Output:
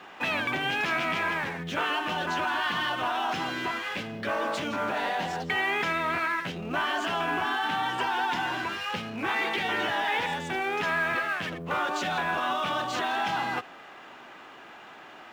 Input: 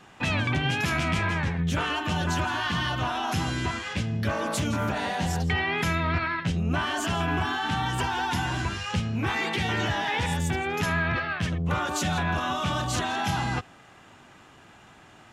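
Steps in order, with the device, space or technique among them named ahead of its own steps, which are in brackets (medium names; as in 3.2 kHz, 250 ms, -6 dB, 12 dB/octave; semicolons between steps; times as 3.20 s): phone line with mismatched companding (band-pass 350–3600 Hz; companding laws mixed up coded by mu)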